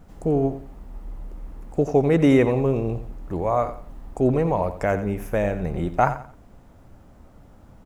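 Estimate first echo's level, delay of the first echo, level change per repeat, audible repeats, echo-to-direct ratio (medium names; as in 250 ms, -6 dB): -12.5 dB, 88 ms, -11.0 dB, 3, -12.0 dB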